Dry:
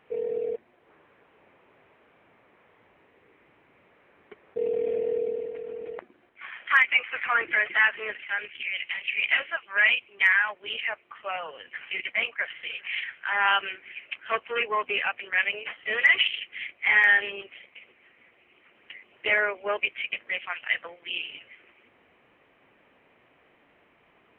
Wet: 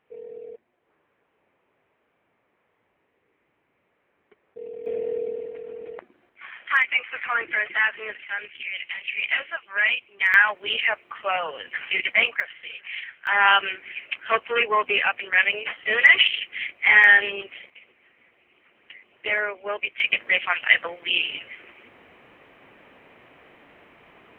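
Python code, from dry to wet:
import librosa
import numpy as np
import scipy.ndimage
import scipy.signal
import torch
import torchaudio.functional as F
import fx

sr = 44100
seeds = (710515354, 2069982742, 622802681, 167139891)

y = fx.gain(x, sr, db=fx.steps((0.0, -10.0), (4.86, -0.5), (10.34, 7.5), (12.4, -2.5), (13.27, 5.5), (17.7, -1.0), (20.0, 9.5)))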